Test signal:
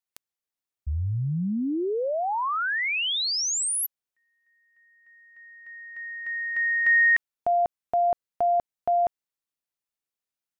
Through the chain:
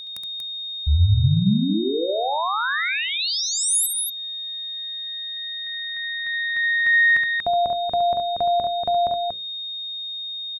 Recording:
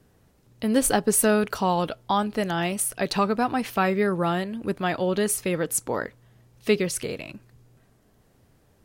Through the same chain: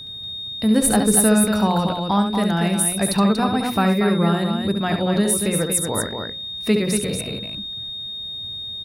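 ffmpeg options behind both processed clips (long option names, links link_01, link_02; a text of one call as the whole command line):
ffmpeg -i in.wav -filter_complex "[0:a]equalizer=frequency=84:width_type=o:width=1.9:gain=10.5,bandreject=frequency=60:width_type=h:width=6,bandreject=frequency=120:width_type=h:width=6,bandreject=frequency=180:width_type=h:width=6,bandreject=frequency=240:width_type=h:width=6,bandreject=frequency=300:width_type=h:width=6,bandreject=frequency=360:width_type=h:width=6,bandreject=frequency=420:width_type=h:width=6,bandreject=frequency=480:width_type=h:width=6,bandreject=frequency=540:width_type=h:width=6,aeval=exprs='val(0)+0.0158*sin(2*PI*3700*n/s)':channel_layout=same,equalizer=frequency=200:width_type=o:width=0.33:gain=5,equalizer=frequency=3150:width_type=o:width=0.33:gain=-6,equalizer=frequency=6300:width_type=o:width=0.33:gain=-4,equalizer=frequency=10000:width_type=o:width=0.33:gain=7,aecho=1:1:69.97|236.2:0.447|0.501,asplit=2[link_01][link_02];[link_02]acompressor=threshold=-30dB:ratio=6:attack=3.1:release=528:knee=1:detection=peak,volume=-0.5dB[link_03];[link_01][link_03]amix=inputs=2:normalize=0,volume=-1dB" out.wav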